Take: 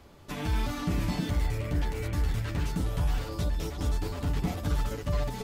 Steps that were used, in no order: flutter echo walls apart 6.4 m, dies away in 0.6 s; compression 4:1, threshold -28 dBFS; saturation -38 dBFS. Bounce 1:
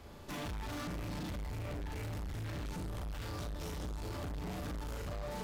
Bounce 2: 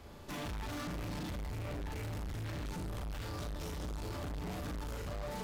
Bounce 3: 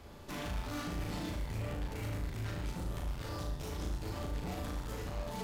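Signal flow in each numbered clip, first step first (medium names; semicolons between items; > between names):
flutter echo > compression > saturation; compression > flutter echo > saturation; compression > saturation > flutter echo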